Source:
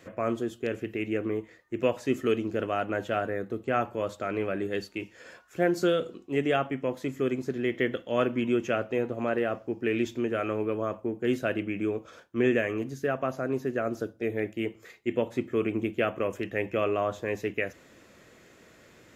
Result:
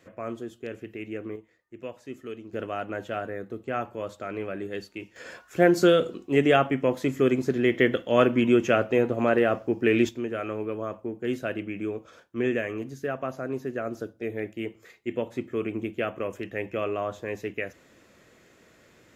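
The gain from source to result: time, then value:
-5.5 dB
from 1.36 s -12 dB
from 2.53 s -3 dB
from 5.16 s +6 dB
from 10.09 s -2 dB

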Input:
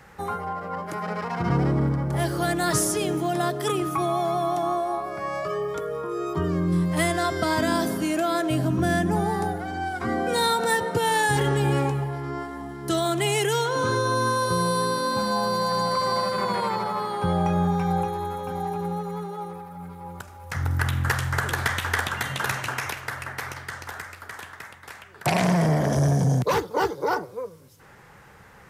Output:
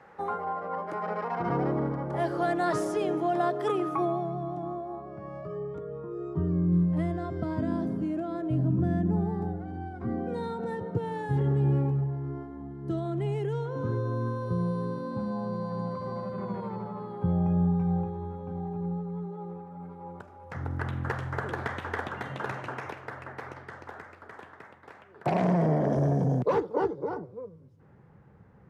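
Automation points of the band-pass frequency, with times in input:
band-pass, Q 0.72
3.91 s 620 Hz
4.33 s 130 Hz
19.15 s 130 Hz
19.89 s 370 Hz
26.69 s 370 Hz
27.12 s 150 Hz

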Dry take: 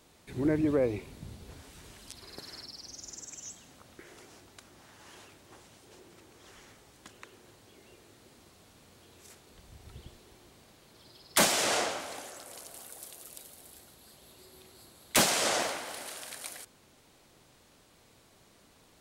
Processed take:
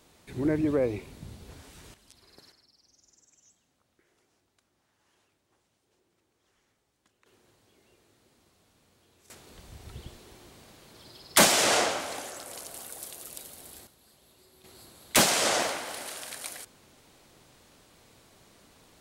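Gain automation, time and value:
+1 dB
from 1.94 s -9.5 dB
from 2.52 s -18 dB
from 7.26 s -7.5 dB
from 9.3 s +5 dB
from 13.87 s -5 dB
from 14.64 s +3 dB

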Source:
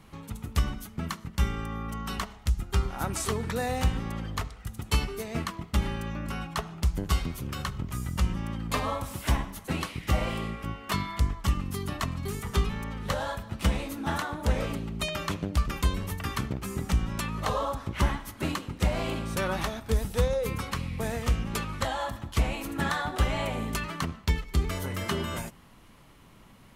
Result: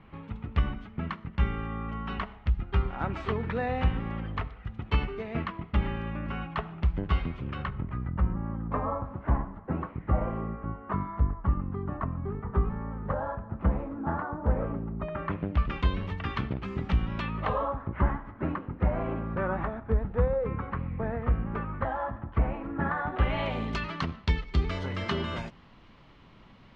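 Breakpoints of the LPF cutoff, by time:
LPF 24 dB/oct
7.53 s 2800 Hz
8.37 s 1400 Hz
15.01 s 1400 Hz
15.75 s 3400 Hz
17.26 s 3400 Hz
17.86 s 1700 Hz
22.96 s 1700 Hz
23.56 s 4500 Hz

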